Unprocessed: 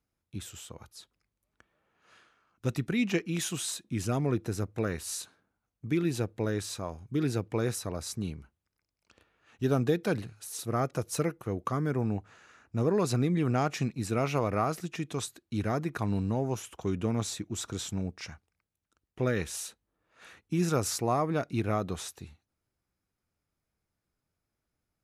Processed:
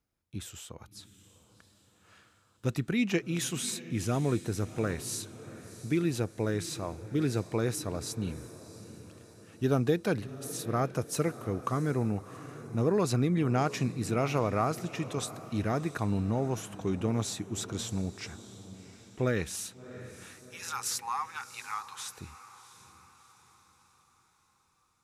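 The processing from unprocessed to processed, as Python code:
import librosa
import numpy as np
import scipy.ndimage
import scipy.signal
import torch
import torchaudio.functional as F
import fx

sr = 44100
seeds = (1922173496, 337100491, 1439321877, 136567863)

p1 = fx.brickwall_highpass(x, sr, low_hz=770.0, at=(20.38, 22.17))
y = p1 + fx.echo_diffused(p1, sr, ms=699, feedback_pct=48, wet_db=-15.0, dry=0)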